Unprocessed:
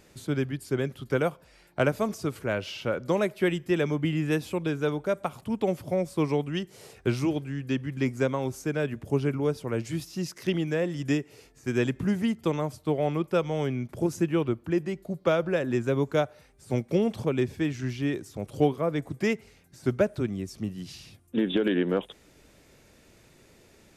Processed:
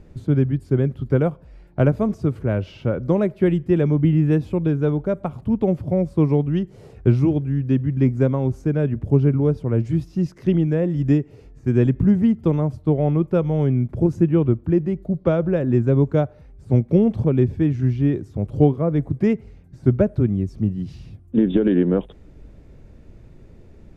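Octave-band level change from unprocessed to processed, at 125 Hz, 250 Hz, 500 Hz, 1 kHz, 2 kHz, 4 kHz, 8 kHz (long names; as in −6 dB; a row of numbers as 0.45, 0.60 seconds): +12.5 dB, +9.0 dB, +5.0 dB, +0.5 dB, −4.0 dB, can't be measured, below −10 dB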